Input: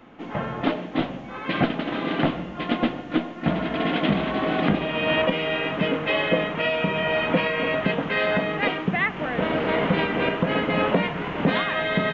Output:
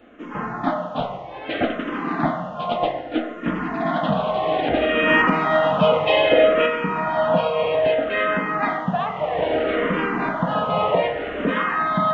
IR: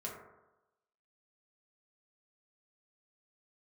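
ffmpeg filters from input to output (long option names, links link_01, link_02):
-filter_complex "[0:a]asettb=1/sr,asplit=3[link_01][link_02][link_03];[link_01]atrim=end=4.734[link_04];[link_02]atrim=start=4.73:end=6.66,asetpts=PTS-STARTPTS,afade=type=in:duration=0.004:curve=qsin,afade=type=out:start_time=1.926:duration=0.004:curve=qsin,acontrast=27[link_05];[link_03]atrim=start=6.656[link_06];[link_04][link_05]acrossfade=duration=0.004:curve1=hsin:curve2=qsin[link_07];[link_07][link_06]acrossfade=duration=0.004:curve1=qsin:curve2=hsin,asplit=2[link_08][link_09];[link_09]highpass=350,equalizer=frequency=360:width_type=q:width=4:gain=-10,equalizer=frequency=560:width_type=q:width=4:gain=7,equalizer=frequency=820:width_type=q:width=4:gain=9,equalizer=frequency=1200:width_type=q:width=4:gain=5,equalizer=frequency=1900:width_type=q:width=4:gain=9,lowpass=frequency=2500:width=0.5412,lowpass=frequency=2500:width=1.3066[link_10];[1:a]atrim=start_sample=2205,highshelf=frequency=3700:gain=-8.5[link_11];[link_10][link_11]afir=irnorm=-1:irlink=0,volume=-2.5dB[link_12];[link_08][link_12]amix=inputs=2:normalize=0,asplit=2[link_13][link_14];[link_14]afreqshift=-0.62[link_15];[link_13][link_15]amix=inputs=2:normalize=1,volume=1dB"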